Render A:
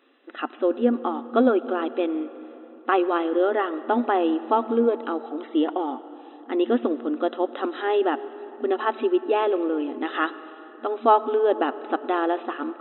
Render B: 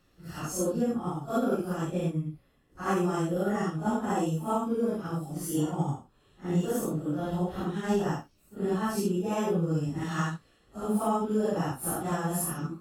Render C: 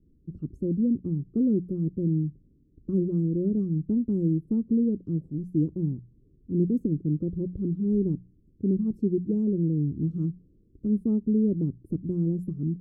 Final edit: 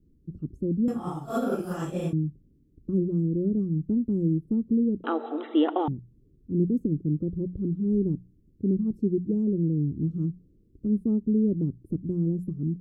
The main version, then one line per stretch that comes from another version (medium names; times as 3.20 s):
C
0.88–2.13 s: from B
5.04–5.88 s: from A